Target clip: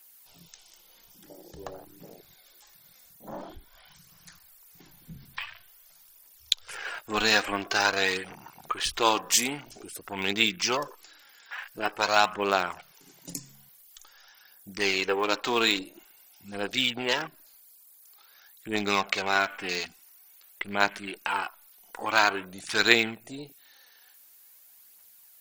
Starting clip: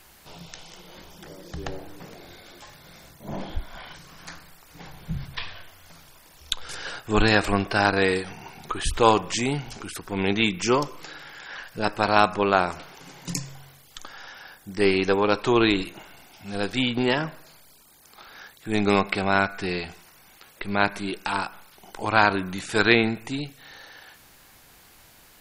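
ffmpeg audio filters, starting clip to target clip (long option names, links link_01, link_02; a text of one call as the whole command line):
ffmpeg -i in.wav -filter_complex "[0:a]afwtdn=0.0158,aphaser=in_gain=1:out_gain=1:delay=4.5:decay=0.36:speed=0.48:type=triangular,asplit=2[link_01][link_02];[link_02]acompressor=threshold=-31dB:ratio=6,volume=-2.5dB[link_03];[link_01][link_03]amix=inputs=2:normalize=0,aemphasis=mode=production:type=riaa,volume=-5.5dB" out.wav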